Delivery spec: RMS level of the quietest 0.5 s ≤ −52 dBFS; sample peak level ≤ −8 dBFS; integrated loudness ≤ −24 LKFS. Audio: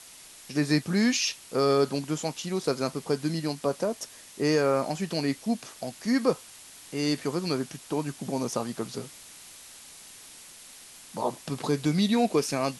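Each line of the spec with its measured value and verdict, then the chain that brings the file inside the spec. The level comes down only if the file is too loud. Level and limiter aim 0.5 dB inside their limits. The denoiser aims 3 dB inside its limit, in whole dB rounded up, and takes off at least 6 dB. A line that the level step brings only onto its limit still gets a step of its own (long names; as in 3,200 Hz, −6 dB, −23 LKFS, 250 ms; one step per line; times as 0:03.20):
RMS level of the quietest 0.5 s −49 dBFS: out of spec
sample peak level −10.5 dBFS: in spec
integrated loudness −28.0 LKFS: in spec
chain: broadband denoise 6 dB, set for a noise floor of −49 dBFS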